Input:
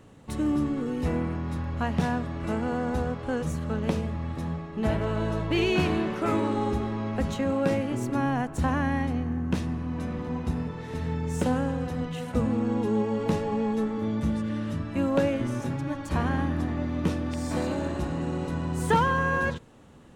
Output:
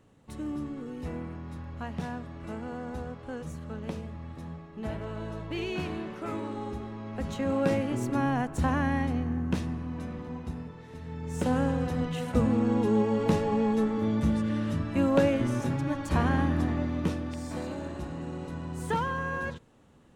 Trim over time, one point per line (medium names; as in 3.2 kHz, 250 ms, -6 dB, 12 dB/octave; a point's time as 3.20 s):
7.04 s -9 dB
7.55 s -1 dB
9.40 s -1 dB
11.03 s -11 dB
11.62 s +1 dB
16.69 s +1 dB
17.54 s -7 dB